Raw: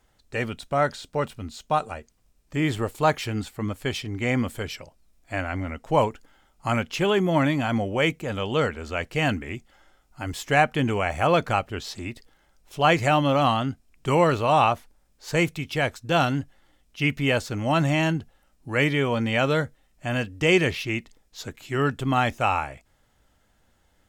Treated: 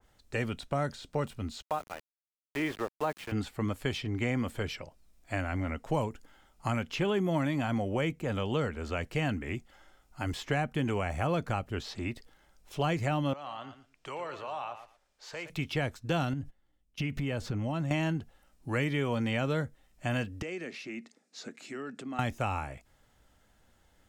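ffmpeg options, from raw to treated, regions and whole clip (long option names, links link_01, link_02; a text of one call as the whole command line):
ffmpeg -i in.wav -filter_complex "[0:a]asettb=1/sr,asplit=3[link_01][link_02][link_03];[link_01]atrim=end=1.624[link_04];[link_02]atrim=start=1.62:end=3.32,asetpts=PTS-STARTPTS,afade=type=in:duration=0.004:curve=qsin,afade=type=out:start_time=1.696:duration=0.004:curve=qsin,highpass=frequency=170:poles=1,bass=frequency=250:gain=-13,treble=frequency=4000:gain=-12,aeval=exprs='val(0)*gte(abs(val(0)),0.0168)':channel_layout=same[link_05];[link_03]atrim=start=3.316[link_06];[link_04][link_05]acrossfade=duration=0.004:curve1=hsin:curve2=qsin[link_07];[link_07][link_06]acrossfade=duration=0.004:curve1=qsin:curve2=hsin,asettb=1/sr,asplit=3[link_08][link_09][link_10];[link_08]atrim=end=13.334[link_11];[link_09]atrim=start=13.33:end=15.5,asetpts=PTS-STARTPTS,afade=type=in:duration=0.004:curve=qsin,afade=type=out:start_time=2.166:duration=0.004:curve=qsin,acrossover=split=420 7400:gain=0.178 1 0.224[link_12][link_13][link_14];[link_12][link_13][link_14]amix=inputs=3:normalize=0,acompressor=threshold=-46dB:ratio=2:attack=3.2:release=140:knee=1:detection=peak,aecho=1:1:115|230:0.282|0.0479,atrim=end_sample=95697[link_15];[link_10]atrim=start=15.496[link_16];[link_11][link_15]acrossfade=duration=0.004:curve1=hsin:curve2=qsin[link_17];[link_17][link_16]acrossfade=duration=0.004:curve1=qsin:curve2=hsin,asettb=1/sr,asplit=3[link_18][link_19][link_20];[link_18]atrim=end=16.334[link_21];[link_19]atrim=start=16.33:end=17.91,asetpts=PTS-STARTPTS,afade=type=in:duration=0.004:curve=qsin,afade=type=out:start_time=1.576:duration=0.004:curve=qsin,agate=range=-18dB:threshold=-49dB:ratio=16:release=100:detection=peak,lowshelf=frequency=370:gain=9.5,acompressor=threshold=-26dB:ratio=12:attack=3.2:release=140:knee=1:detection=peak[link_22];[link_20]atrim=start=17.906[link_23];[link_21][link_22]acrossfade=duration=0.004:curve1=hsin:curve2=qsin[link_24];[link_24][link_23]acrossfade=duration=0.004:curve1=qsin:curve2=hsin,asettb=1/sr,asplit=3[link_25][link_26][link_27];[link_25]atrim=end=20.424[link_28];[link_26]atrim=start=20.42:end=22.19,asetpts=PTS-STARTPTS,afade=type=in:duration=0.004:curve=qsin,afade=type=out:start_time=1.766:duration=0.004:curve=qsin,acompressor=threshold=-35dB:ratio=5:attack=3.2:release=140:knee=1:detection=peak,highpass=frequency=200:width=0.5412,highpass=frequency=200:width=1.3066,equalizer=frequency=230:width_type=q:width=4:gain=6,equalizer=frequency=970:width_type=q:width=4:gain=-7,equalizer=frequency=3200:width_type=q:width=4:gain=-8,lowpass=frequency=9000:width=0.5412,lowpass=frequency=9000:width=1.3066[link_29];[link_27]atrim=start=22.186[link_30];[link_28][link_29]acrossfade=duration=0.004:curve1=hsin:curve2=qsin[link_31];[link_31][link_30]acrossfade=duration=0.004:curve1=qsin:curve2=hsin,acrossover=split=320|5100[link_32][link_33][link_34];[link_32]acompressor=threshold=-29dB:ratio=4[link_35];[link_33]acompressor=threshold=-31dB:ratio=4[link_36];[link_34]acompressor=threshold=-52dB:ratio=4[link_37];[link_35][link_36][link_37]amix=inputs=3:normalize=0,adynamicequalizer=threshold=0.00562:dfrequency=2300:dqfactor=0.7:tfrequency=2300:tqfactor=0.7:attack=5:release=100:ratio=0.375:range=1.5:mode=cutabove:tftype=highshelf,volume=-1dB" out.wav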